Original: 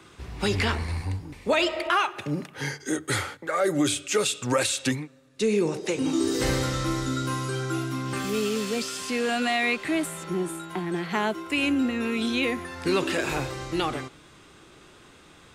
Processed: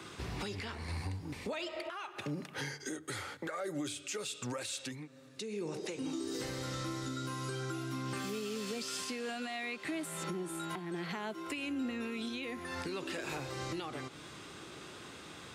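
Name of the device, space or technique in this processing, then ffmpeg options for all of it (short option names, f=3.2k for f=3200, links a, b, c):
broadcast voice chain: -af "highpass=87,deesser=0.45,acompressor=threshold=-38dB:ratio=4,equalizer=f=4.7k:t=o:w=0.77:g=2.5,alimiter=level_in=7.5dB:limit=-24dB:level=0:latency=1:release=353,volume=-7.5dB,volume=2.5dB"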